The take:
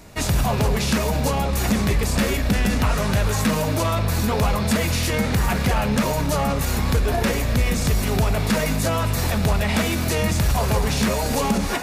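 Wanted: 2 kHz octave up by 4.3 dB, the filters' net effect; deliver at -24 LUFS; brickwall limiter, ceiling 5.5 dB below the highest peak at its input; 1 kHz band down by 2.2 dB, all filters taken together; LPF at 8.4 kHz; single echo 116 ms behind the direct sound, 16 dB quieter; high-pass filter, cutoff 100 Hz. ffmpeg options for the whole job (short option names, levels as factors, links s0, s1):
-af "highpass=100,lowpass=8400,equalizer=f=1000:t=o:g=-4.5,equalizer=f=2000:t=o:g=6.5,alimiter=limit=0.211:level=0:latency=1,aecho=1:1:116:0.158,volume=0.891"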